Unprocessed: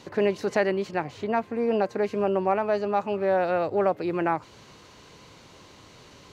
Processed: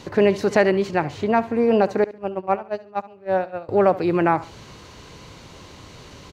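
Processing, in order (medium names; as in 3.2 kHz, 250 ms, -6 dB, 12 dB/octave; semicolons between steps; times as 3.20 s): bass shelf 110 Hz +9 dB; 2.04–3.69 s: gate -20 dBFS, range -26 dB; feedback delay 70 ms, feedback 29%, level -17.5 dB; trim +6 dB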